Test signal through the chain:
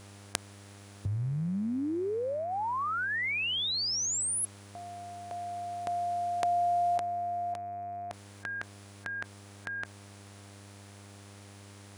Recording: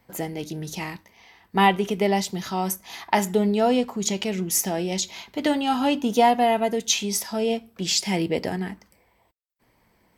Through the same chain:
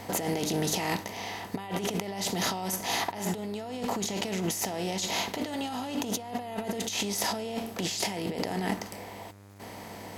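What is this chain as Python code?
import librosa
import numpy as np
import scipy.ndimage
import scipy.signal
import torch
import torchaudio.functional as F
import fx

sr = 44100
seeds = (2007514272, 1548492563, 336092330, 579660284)

y = fx.bin_compress(x, sr, power=0.6)
y = fx.peak_eq(y, sr, hz=650.0, db=2.0, octaves=0.4)
y = fx.over_compress(y, sr, threshold_db=-26.0, ratio=-1.0)
y = fx.dmg_crackle(y, sr, seeds[0], per_s=40.0, level_db=-54.0)
y = fx.dmg_buzz(y, sr, base_hz=100.0, harmonics=25, level_db=-45.0, tilt_db=-6, odd_only=False)
y = y * 10.0 ** (-6.5 / 20.0)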